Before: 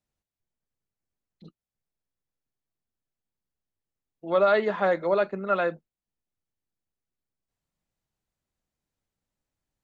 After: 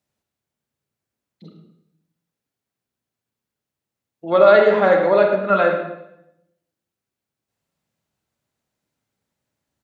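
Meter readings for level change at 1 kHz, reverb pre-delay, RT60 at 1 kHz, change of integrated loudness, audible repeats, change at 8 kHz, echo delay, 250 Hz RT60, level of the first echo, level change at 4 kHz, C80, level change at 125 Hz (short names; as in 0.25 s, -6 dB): +8.0 dB, 31 ms, 0.70 s, +9.5 dB, 1, n/a, 0.106 s, 1.0 s, -11.5 dB, +8.0 dB, 6.0 dB, +8.5 dB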